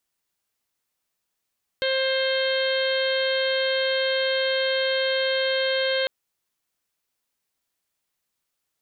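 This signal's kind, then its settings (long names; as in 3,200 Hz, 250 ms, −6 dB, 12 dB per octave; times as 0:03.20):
steady harmonic partials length 4.25 s, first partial 529 Hz, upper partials −17/−6/−9.5/−14/−6.5/−11/−9.5 dB, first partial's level −23 dB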